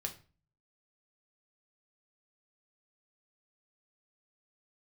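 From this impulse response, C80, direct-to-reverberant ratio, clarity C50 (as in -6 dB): 18.5 dB, 3.0 dB, 13.0 dB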